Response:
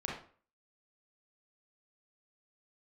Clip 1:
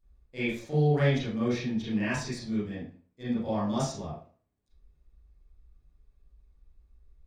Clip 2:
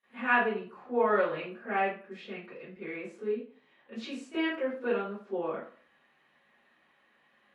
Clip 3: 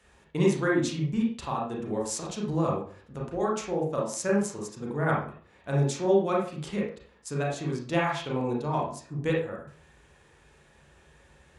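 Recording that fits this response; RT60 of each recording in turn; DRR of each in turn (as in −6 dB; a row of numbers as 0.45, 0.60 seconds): 3; 0.45, 0.45, 0.45 seconds; −12.0, −21.5, −3.5 decibels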